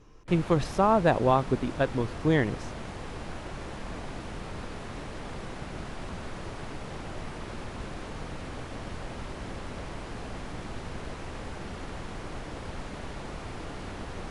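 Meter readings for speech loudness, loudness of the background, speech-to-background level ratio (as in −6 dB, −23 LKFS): −26.0 LKFS, −39.5 LKFS, 13.5 dB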